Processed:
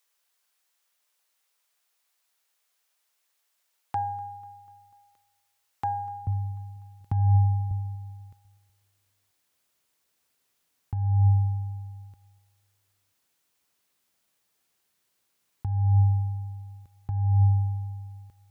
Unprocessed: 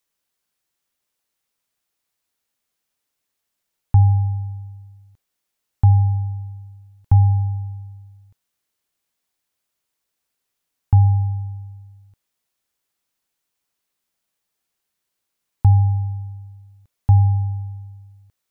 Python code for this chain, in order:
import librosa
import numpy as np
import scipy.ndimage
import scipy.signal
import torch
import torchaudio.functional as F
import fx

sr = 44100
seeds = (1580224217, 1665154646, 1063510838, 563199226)

y = fx.tracing_dist(x, sr, depth_ms=0.037)
y = fx.highpass(y, sr, hz=fx.steps((0.0, 620.0), (6.27, 110.0), (7.71, 49.0)), slope=12)
y = fx.over_compress(y, sr, threshold_db=-21.0, ratio=-1.0)
y = fx.echo_feedback(y, sr, ms=246, feedback_pct=59, wet_db=-23)